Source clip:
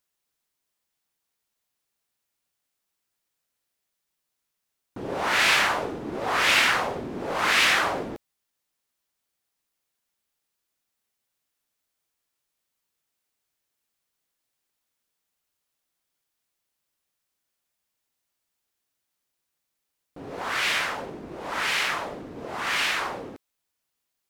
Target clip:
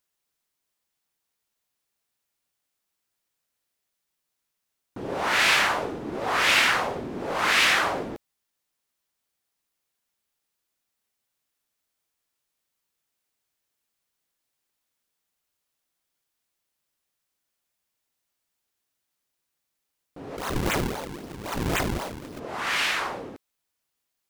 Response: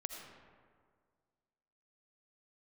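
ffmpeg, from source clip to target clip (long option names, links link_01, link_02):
-filter_complex "[0:a]asplit=3[link_01][link_02][link_03];[link_01]afade=type=out:start_time=20.36:duration=0.02[link_04];[link_02]acrusher=samples=41:mix=1:aa=0.000001:lfo=1:lforange=65.6:lforate=3.8,afade=type=in:start_time=20.36:duration=0.02,afade=type=out:start_time=22.38:duration=0.02[link_05];[link_03]afade=type=in:start_time=22.38:duration=0.02[link_06];[link_04][link_05][link_06]amix=inputs=3:normalize=0"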